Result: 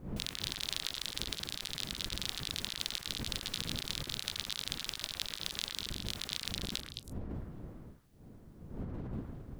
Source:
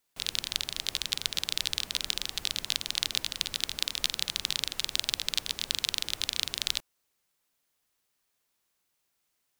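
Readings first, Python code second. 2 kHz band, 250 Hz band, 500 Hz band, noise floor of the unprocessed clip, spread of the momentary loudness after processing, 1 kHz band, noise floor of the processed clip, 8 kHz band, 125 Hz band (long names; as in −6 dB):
−6.5 dB, +7.5 dB, +1.5 dB, −78 dBFS, 9 LU, −3.0 dB, −54 dBFS, −8.0 dB, +8.0 dB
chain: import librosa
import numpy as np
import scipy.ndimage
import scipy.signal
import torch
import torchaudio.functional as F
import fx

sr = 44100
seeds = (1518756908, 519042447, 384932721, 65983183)

p1 = fx.dmg_wind(x, sr, seeds[0], corner_hz=200.0, level_db=-41.0)
p2 = fx.over_compress(p1, sr, threshold_db=-36.0, ratio=-1.0)
p3 = p2 + fx.echo_stepped(p2, sr, ms=108, hz=1500.0, octaves=1.4, feedback_pct=70, wet_db=-1.0, dry=0)
y = F.gain(torch.from_numpy(p3), -4.0).numpy()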